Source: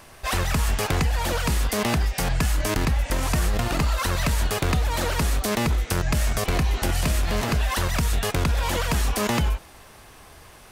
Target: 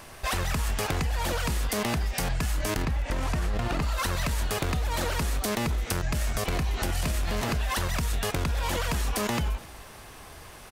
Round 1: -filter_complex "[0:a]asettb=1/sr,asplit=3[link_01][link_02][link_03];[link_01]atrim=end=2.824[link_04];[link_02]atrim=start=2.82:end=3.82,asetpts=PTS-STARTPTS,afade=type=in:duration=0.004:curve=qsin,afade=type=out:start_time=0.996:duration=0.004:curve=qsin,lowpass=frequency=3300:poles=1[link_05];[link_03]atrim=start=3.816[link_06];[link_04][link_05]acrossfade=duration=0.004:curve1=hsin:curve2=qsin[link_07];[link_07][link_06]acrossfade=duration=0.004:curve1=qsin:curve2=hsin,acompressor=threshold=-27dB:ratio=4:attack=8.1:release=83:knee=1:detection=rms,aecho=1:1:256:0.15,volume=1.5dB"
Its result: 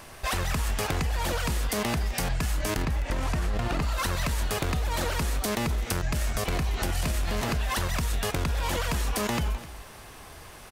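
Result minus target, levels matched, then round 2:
echo-to-direct +6.5 dB
-filter_complex "[0:a]asettb=1/sr,asplit=3[link_01][link_02][link_03];[link_01]atrim=end=2.824[link_04];[link_02]atrim=start=2.82:end=3.82,asetpts=PTS-STARTPTS,afade=type=in:duration=0.004:curve=qsin,afade=type=out:start_time=0.996:duration=0.004:curve=qsin,lowpass=frequency=3300:poles=1[link_05];[link_03]atrim=start=3.816[link_06];[link_04][link_05]acrossfade=duration=0.004:curve1=hsin:curve2=qsin[link_07];[link_07][link_06]acrossfade=duration=0.004:curve1=qsin:curve2=hsin,acompressor=threshold=-27dB:ratio=4:attack=8.1:release=83:knee=1:detection=rms,aecho=1:1:256:0.0708,volume=1.5dB"

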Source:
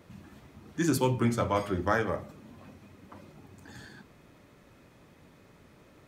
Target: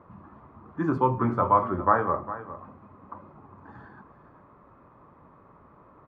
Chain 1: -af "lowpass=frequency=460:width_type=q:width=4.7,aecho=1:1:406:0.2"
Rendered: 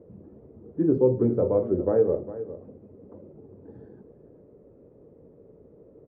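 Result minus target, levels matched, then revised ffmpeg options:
1,000 Hz band −20.0 dB
-af "lowpass=frequency=1100:width_type=q:width=4.7,aecho=1:1:406:0.2"

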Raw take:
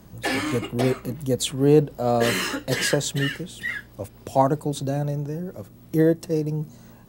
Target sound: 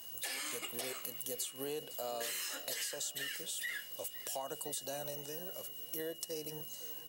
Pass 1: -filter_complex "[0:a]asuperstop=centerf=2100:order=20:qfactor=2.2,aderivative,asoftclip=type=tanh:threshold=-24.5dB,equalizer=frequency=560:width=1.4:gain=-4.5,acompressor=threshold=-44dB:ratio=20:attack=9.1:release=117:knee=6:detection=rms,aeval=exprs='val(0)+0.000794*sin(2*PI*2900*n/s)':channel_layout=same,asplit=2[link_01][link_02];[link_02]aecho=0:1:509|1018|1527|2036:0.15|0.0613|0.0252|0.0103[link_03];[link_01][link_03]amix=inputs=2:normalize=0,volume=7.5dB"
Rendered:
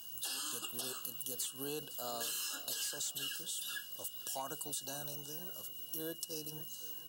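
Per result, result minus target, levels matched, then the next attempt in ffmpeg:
soft clipping: distortion +12 dB; 2,000 Hz band −5.5 dB; 500 Hz band −5.0 dB
-filter_complex "[0:a]asuperstop=centerf=2100:order=20:qfactor=2.2,aderivative,asoftclip=type=tanh:threshold=-15.5dB,equalizer=frequency=560:width=1.4:gain=-4.5,acompressor=threshold=-44dB:ratio=20:attack=9.1:release=117:knee=6:detection=rms,aeval=exprs='val(0)+0.000794*sin(2*PI*2900*n/s)':channel_layout=same,asplit=2[link_01][link_02];[link_02]aecho=0:1:509|1018|1527|2036:0.15|0.0613|0.0252|0.0103[link_03];[link_01][link_03]amix=inputs=2:normalize=0,volume=7.5dB"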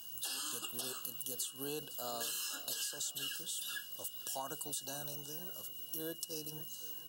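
2,000 Hz band −5.5 dB; 500 Hz band −5.0 dB
-filter_complex "[0:a]aderivative,asoftclip=type=tanh:threshold=-15.5dB,equalizer=frequency=560:width=1.4:gain=-4.5,acompressor=threshold=-44dB:ratio=20:attack=9.1:release=117:knee=6:detection=rms,aeval=exprs='val(0)+0.000794*sin(2*PI*2900*n/s)':channel_layout=same,asplit=2[link_01][link_02];[link_02]aecho=0:1:509|1018|1527|2036:0.15|0.0613|0.0252|0.0103[link_03];[link_01][link_03]amix=inputs=2:normalize=0,volume=7.5dB"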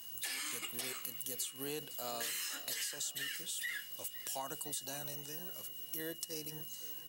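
500 Hz band −5.5 dB
-filter_complex "[0:a]aderivative,asoftclip=type=tanh:threshold=-15.5dB,equalizer=frequency=560:width=1.4:gain=6,acompressor=threshold=-44dB:ratio=20:attack=9.1:release=117:knee=6:detection=rms,aeval=exprs='val(0)+0.000794*sin(2*PI*2900*n/s)':channel_layout=same,asplit=2[link_01][link_02];[link_02]aecho=0:1:509|1018|1527|2036:0.15|0.0613|0.0252|0.0103[link_03];[link_01][link_03]amix=inputs=2:normalize=0,volume=7.5dB"

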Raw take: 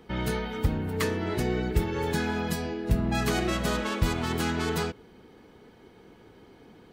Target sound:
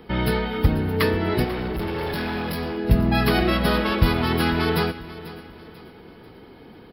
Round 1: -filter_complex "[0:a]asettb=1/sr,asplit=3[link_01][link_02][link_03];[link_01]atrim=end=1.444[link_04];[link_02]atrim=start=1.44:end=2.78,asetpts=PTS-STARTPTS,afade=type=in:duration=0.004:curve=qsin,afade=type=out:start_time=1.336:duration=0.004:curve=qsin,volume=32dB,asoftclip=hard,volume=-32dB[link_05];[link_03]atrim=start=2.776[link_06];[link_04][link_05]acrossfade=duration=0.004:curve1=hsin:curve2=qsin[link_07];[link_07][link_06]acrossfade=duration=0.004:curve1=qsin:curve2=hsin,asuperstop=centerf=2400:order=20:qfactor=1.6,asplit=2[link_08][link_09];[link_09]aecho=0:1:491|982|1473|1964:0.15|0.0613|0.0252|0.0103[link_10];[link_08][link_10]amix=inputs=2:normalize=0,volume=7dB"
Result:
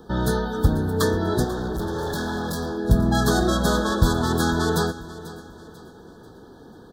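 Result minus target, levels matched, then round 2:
8,000 Hz band +11.0 dB
-filter_complex "[0:a]asettb=1/sr,asplit=3[link_01][link_02][link_03];[link_01]atrim=end=1.444[link_04];[link_02]atrim=start=1.44:end=2.78,asetpts=PTS-STARTPTS,afade=type=in:duration=0.004:curve=qsin,afade=type=out:start_time=1.336:duration=0.004:curve=qsin,volume=32dB,asoftclip=hard,volume=-32dB[link_05];[link_03]atrim=start=2.776[link_06];[link_04][link_05]acrossfade=duration=0.004:curve1=hsin:curve2=qsin[link_07];[link_07][link_06]acrossfade=duration=0.004:curve1=qsin:curve2=hsin,asuperstop=centerf=7500:order=20:qfactor=1.6,asplit=2[link_08][link_09];[link_09]aecho=0:1:491|982|1473|1964:0.15|0.0613|0.0252|0.0103[link_10];[link_08][link_10]amix=inputs=2:normalize=0,volume=7dB"

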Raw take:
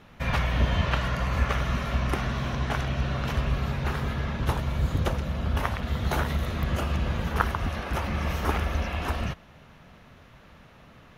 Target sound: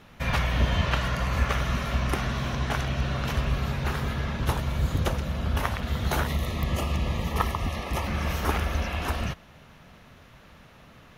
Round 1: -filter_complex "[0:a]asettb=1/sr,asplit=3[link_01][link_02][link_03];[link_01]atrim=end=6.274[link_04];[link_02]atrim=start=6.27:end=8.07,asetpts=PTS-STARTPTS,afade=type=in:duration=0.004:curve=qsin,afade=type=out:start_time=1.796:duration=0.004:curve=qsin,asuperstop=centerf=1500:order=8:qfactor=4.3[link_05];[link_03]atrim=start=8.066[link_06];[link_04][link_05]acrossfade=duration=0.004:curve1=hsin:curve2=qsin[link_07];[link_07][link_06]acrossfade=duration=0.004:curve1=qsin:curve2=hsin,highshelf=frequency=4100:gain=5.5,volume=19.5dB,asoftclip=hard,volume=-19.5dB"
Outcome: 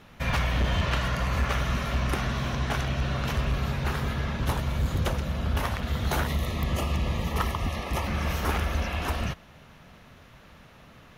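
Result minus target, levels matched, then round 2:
gain into a clipping stage and back: distortion +23 dB
-filter_complex "[0:a]asettb=1/sr,asplit=3[link_01][link_02][link_03];[link_01]atrim=end=6.274[link_04];[link_02]atrim=start=6.27:end=8.07,asetpts=PTS-STARTPTS,afade=type=in:duration=0.004:curve=qsin,afade=type=out:start_time=1.796:duration=0.004:curve=qsin,asuperstop=centerf=1500:order=8:qfactor=4.3[link_05];[link_03]atrim=start=8.066[link_06];[link_04][link_05]acrossfade=duration=0.004:curve1=hsin:curve2=qsin[link_07];[link_07][link_06]acrossfade=duration=0.004:curve1=qsin:curve2=hsin,highshelf=frequency=4100:gain=5.5,volume=10.5dB,asoftclip=hard,volume=-10.5dB"

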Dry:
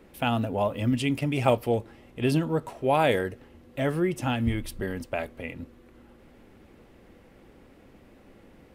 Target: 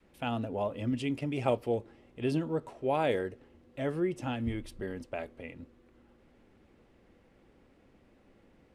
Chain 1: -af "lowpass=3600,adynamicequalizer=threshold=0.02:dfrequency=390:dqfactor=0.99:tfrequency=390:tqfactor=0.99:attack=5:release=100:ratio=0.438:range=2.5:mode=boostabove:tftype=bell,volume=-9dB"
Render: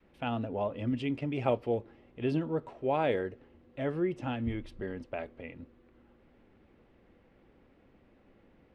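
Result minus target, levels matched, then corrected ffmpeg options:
8,000 Hz band −12.0 dB
-af "lowpass=8800,adynamicequalizer=threshold=0.02:dfrequency=390:dqfactor=0.99:tfrequency=390:tqfactor=0.99:attack=5:release=100:ratio=0.438:range=2.5:mode=boostabove:tftype=bell,volume=-9dB"

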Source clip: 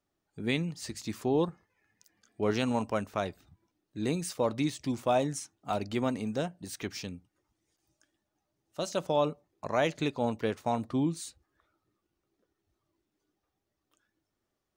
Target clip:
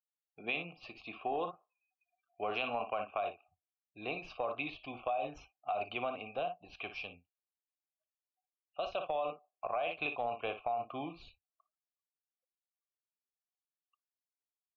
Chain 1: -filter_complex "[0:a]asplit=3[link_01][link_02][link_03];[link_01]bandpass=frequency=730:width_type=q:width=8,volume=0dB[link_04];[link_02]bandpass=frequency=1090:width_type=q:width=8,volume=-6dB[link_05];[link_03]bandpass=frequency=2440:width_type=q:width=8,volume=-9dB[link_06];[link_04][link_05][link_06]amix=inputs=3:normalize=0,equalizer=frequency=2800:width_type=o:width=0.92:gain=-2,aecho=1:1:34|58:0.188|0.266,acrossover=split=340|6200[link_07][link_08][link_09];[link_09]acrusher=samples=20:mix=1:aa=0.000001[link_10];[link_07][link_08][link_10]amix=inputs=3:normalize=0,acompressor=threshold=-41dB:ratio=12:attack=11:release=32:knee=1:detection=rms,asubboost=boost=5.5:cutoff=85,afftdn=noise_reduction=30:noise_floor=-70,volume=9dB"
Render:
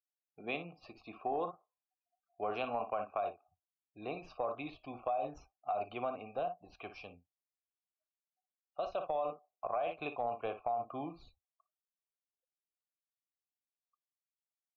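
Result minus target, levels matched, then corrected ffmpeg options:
2,000 Hz band −6.5 dB
-filter_complex "[0:a]asplit=3[link_01][link_02][link_03];[link_01]bandpass=frequency=730:width_type=q:width=8,volume=0dB[link_04];[link_02]bandpass=frequency=1090:width_type=q:width=8,volume=-6dB[link_05];[link_03]bandpass=frequency=2440:width_type=q:width=8,volume=-9dB[link_06];[link_04][link_05][link_06]amix=inputs=3:normalize=0,equalizer=frequency=2800:width_type=o:width=0.92:gain=8.5,aecho=1:1:34|58:0.188|0.266,acrossover=split=340|6200[link_07][link_08][link_09];[link_09]acrusher=samples=20:mix=1:aa=0.000001[link_10];[link_07][link_08][link_10]amix=inputs=3:normalize=0,acompressor=threshold=-41dB:ratio=12:attack=11:release=32:knee=1:detection=rms,asubboost=boost=5.5:cutoff=85,afftdn=noise_reduction=30:noise_floor=-70,volume=9dB"

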